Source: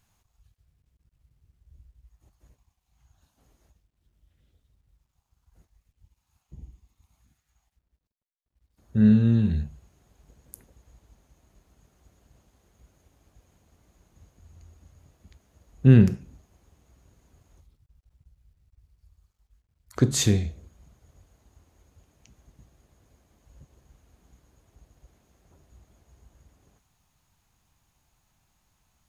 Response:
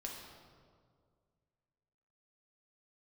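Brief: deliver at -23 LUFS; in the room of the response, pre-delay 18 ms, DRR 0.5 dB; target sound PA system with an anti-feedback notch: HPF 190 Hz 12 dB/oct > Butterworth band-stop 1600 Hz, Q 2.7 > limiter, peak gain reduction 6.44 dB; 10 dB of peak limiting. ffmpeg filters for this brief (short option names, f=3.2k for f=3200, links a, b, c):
-filter_complex "[0:a]alimiter=limit=-13.5dB:level=0:latency=1,asplit=2[a][b];[1:a]atrim=start_sample=2205,adelay=18[c];[b][c]afir=irnorm=-1:irlink=0,volume=1dB[d];[a][d]amix=inputs=2:normalize=0,highpass=190,asuperstop=centerf=1600:order=8:qfactor=2.7,volume=7.5dB,alimiter=limit=-10.5dB:level=0:latency=1"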